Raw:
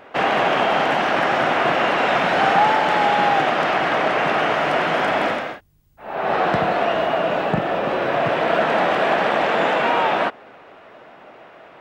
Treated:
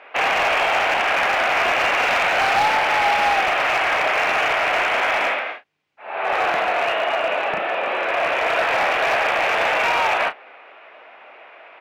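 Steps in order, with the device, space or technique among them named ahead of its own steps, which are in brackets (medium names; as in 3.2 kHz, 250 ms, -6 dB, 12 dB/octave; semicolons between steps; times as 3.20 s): megaphone (band-pass 570–3700 Hz; peaking EQ 2.4 kHz +9 dB 0.51 oct; hard clipper -14.5 dBFS, distortion -15 dB; doubling 33 ms -11 dB)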